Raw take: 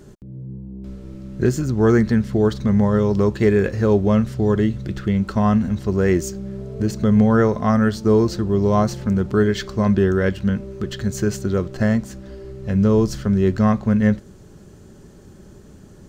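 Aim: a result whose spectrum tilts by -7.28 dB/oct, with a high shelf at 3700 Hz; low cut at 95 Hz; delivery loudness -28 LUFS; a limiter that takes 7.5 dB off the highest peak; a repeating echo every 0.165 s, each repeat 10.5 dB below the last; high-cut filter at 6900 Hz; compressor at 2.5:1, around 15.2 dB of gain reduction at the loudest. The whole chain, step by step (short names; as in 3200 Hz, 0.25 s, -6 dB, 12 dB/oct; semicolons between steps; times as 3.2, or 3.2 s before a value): HPF 95 Hz; LPF 6900 Hz; high shelf 3700 Hz -6.5 dB; compressor 2.5:1, threshold -36 dBFS; limiter -27 dBFS; feedback echo 0.165 s, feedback 30%, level -10.5 dB; gain +9 dB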